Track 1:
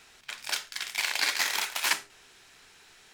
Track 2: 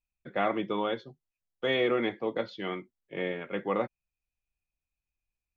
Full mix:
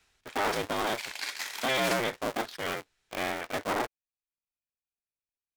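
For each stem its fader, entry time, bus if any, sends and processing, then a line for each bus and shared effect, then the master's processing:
−0.5 dB, 0.00 s, no send, multiband upward and downward expander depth 40%; automatic ducking −9 dB, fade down 0.35 s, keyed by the second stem
−7.0 dB, 0.00 s, no send, sub-harmonics by changed cycles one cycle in 2, inverted; low-shelf EQ 300 Hz −10.5 dB; leveller curve on the samples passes 3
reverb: not used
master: no processing

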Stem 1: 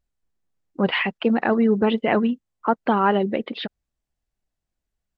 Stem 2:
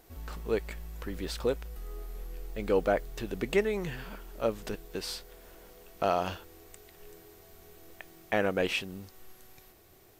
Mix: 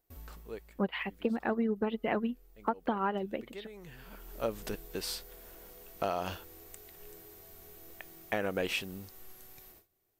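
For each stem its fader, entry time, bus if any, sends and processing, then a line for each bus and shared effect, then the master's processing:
−2.0 dB, 0.00 s, no send, expander for the loud parts 2.5 to 1, over −27 dBFS
−1.5 dB, 0.00 s, no send, noise gate with hold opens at −45 dBFS; high-shelf EQ 11,000 Hz +10.5 dB; automatic ducking −18 dB, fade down 0.80 s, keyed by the first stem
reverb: not used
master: downward compressor 10 to 1, threshold −27 dBFS, peak gain reduction 10.5 dB

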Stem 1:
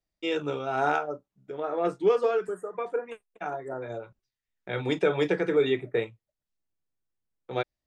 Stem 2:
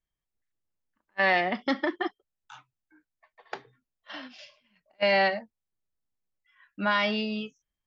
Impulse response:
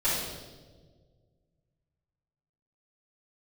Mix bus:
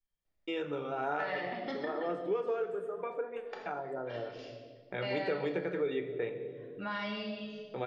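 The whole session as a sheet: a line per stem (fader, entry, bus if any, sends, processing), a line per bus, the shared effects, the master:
+1.5 dB, 0.25 s, send −19.5 dB, bass and treble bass −1 dB, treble −12 dB
−9.0 dB, 0.00 s, send −9 dB, no processing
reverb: on, RT60 1.6 s, pre-delay 4 ms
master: downward compressor 2 to 1, threshold −40 dBFS, peak gain reduction 13.5 dB

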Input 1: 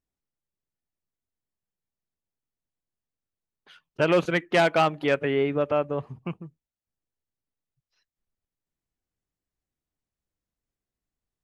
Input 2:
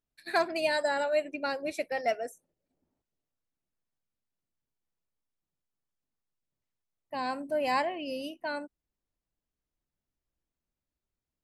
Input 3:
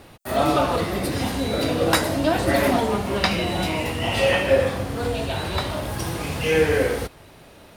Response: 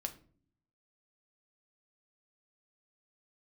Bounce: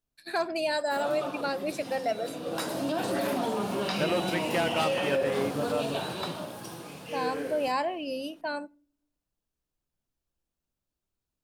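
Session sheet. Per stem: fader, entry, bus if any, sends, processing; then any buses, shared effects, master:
−8.0 dB, 0.00 s, no bus, no send, no processing
+0.5 dB, 0.00 s, bus A, send −12 dB, no processing
−3.5 dB, 0.65 s, bus A, send −20 dB, high-pass filter 150 Hz 24 dB per octave; automatic ducking −15 dB, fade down 1.30 s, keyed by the second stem
bus A: 0.0 dB, parametric band 2,000 Hz −11 dB 0.28 octaves; brickwall limiter −22.5 dBFS, peak gain reduction 11.5 dB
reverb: on, RT60 0.50 s, pre-delay 6 ms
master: no processing

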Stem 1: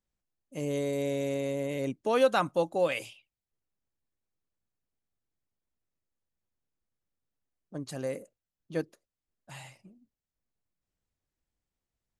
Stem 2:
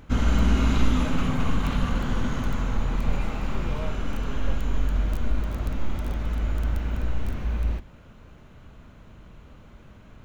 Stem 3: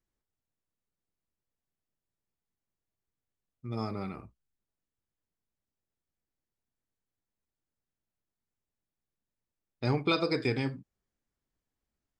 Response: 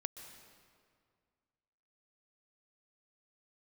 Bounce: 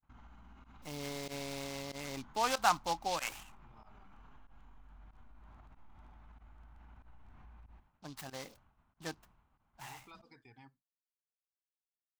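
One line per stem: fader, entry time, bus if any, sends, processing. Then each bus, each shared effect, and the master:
−3.0 dB, 0.30 s, no bus, no send, short delay modulated by noise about 4,100 Hz, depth 0.05 ms
−13.5 dB, 0.00 s, bus A, no send, Bessel low-pass filter 6,300 Hz; downward compressor, threshold −29 dBFS, peak gain reduction 15 dB
−16.5 dB, 0.00 s, bus A, no send, reverb reduction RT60 0.96 s
bus A: 0.0 dB, high-shelf EQ 2,000 Hz −10.5 dB; brickwall limiter −43 dBFS, peak gain reduction 9 dB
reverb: not used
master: downward expander −54 dBFS; low shelf with overshoot 660 Hz −7 dB, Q 3; fake sidechain pumping 94 BPM, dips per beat 1, −22 dB, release 64 ms

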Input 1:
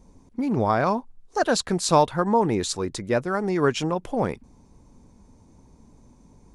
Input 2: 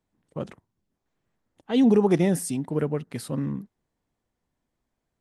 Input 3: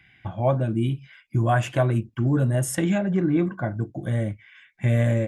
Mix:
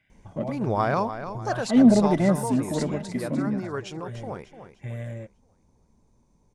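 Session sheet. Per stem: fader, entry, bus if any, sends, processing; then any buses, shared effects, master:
0:01.34 −2 dB → 0:01.74 −10.5 dB, 0.10 s, no send, echo send −10.5 dB, no processing
−5.0 dB, 0.00 s, no send, no echo send, one-sided soft clipper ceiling −20 dBFS; hollow resonant body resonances 250/610/2,000 Hz, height 17 dB
−13.5 dB, 0.00 s, no send, no echo send, no processing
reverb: not used
echo: repeating echo 298 ms, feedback 39%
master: parametric band 270 Hz −5.5 dB 0.37 octaves

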